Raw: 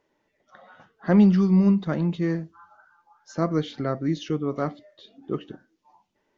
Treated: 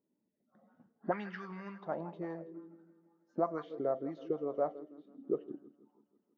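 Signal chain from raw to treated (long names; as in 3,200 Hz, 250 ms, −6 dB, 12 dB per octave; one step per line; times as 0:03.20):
feedback echo with a high-pass in the loop 163 ms, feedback 71%, high-pass 220 Hz, level −16 dB
envelope filter 220–1,700 Hz, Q 3.4, up, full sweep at −15.5 dBFS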